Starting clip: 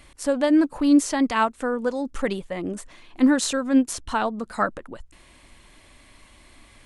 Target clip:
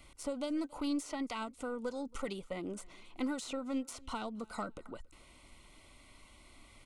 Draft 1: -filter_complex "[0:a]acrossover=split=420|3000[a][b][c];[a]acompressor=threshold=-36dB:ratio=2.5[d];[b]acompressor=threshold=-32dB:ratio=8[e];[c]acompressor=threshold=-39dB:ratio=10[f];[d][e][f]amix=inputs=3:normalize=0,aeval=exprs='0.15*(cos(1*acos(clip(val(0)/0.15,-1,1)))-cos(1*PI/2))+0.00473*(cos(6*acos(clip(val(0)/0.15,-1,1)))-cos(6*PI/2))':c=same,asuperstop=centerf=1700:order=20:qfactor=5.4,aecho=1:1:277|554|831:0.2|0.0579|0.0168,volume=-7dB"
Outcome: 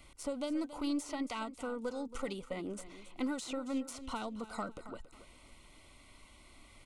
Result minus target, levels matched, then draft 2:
echo-to-direct +11 dB
-filter_complex "[0:a]acrossover=split=420|3000[a][b][c];[a]acompressor=threshold=-36dB:ratio=2.5[d];[b]acompressor=threshold=-32dB:ratio=8[e];[c]acompressor=threshold=-39dB:ratio=10[f];[d][e][f]amix=inputs=3:normalize=0,aeval=exprs='0.15*(cos(1*acos(clip(val(0)/0.15,-1,1)))-cos(1*PI/2))+0.00473*(cos(6*acos(clip(val(0)/0.15,-1,1)))-cos(6*PI/2))':c=same,asuperstop=centerf=1700:order=20:qfactor=5.4,aecho=1:1:277|554:0.0562|0.0163,volume=-7dB"

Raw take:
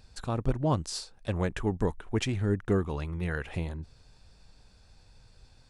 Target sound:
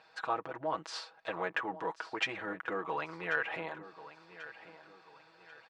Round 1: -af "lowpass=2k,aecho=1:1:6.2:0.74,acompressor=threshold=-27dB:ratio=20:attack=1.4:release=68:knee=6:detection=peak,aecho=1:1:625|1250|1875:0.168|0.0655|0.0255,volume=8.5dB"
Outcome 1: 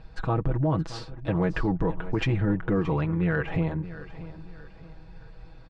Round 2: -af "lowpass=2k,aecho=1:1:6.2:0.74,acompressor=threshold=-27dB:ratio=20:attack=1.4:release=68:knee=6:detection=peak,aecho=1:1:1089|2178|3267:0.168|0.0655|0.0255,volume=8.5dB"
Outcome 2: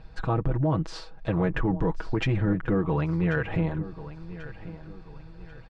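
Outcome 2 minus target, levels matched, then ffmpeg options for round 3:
1000 Hz band -7.5 dB
-af "lowpass=2k,aecho=1:1:6.2:0.74,acompressor=threshold=-27dB:ratio=20:attack=1.4:release=68:knee=6:detection=peak,highpass=770,aecho=1:1:1089|2178|3267:0.168|0.0655|0.0255,volume=8.5dB"

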